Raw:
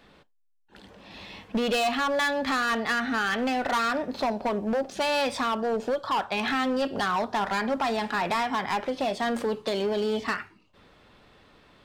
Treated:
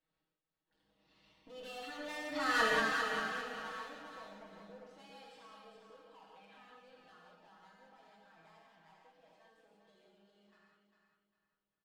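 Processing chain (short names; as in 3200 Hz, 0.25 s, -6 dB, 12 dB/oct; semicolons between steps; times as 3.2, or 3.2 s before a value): Doppler pass-by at 2.62, 17 m/s, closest 1.6 m; notch 2300 Hz, Q 30; comb 6.3 ms, depth 99%; on a send: feedback echo 0.401 s, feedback 33%, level -6.5 dB; on the sum: non-linear reverb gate 0.22 s flat, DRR -2.5 dB; gain -8 dB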